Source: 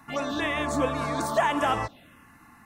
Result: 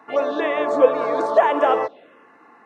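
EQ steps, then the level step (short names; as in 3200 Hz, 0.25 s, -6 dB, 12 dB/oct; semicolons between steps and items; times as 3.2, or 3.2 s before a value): resonant high-pass 450 Hz, resonance Q 4; tape spacing loss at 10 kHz 26 dB; +6.0 dB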